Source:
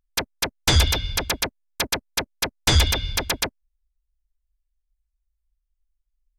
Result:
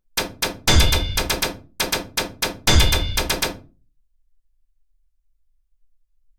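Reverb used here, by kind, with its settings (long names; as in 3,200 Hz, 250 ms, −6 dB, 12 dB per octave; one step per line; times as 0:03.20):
rectangular room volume 140 cubic metres, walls furnished, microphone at 1.1 metres
level +1 dB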